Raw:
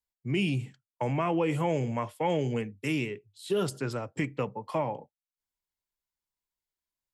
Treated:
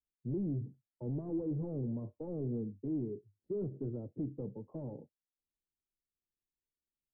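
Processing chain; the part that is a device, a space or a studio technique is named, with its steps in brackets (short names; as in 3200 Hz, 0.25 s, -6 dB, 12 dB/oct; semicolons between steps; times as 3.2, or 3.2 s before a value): overdriven synthesiser ladder filter (soft clip -31 dBFS, distortion -8 dB; ladder low-pass 450 Hz, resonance 30%); gain +4.5 dB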